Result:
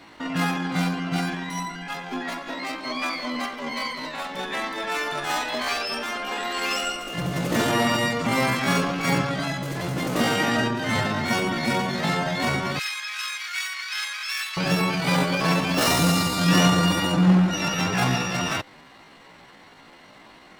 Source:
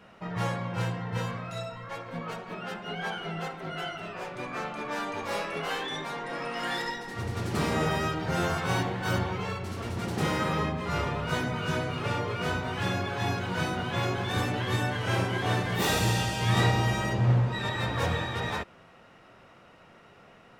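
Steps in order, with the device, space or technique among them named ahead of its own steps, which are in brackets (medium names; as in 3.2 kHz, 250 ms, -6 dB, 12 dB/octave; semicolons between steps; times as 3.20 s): chipmunk voice (pitch shift +7 st); 12.79–14.57 s: inverse Chebyshev high-pass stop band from 260 Hz, stop band 80 dB; trim +6 dB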